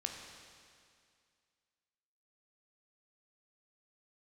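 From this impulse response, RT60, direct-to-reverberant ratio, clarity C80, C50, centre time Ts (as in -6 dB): 2.2 s, 2.0 dB, 5.0 dB, 3.5 dB, 66 ms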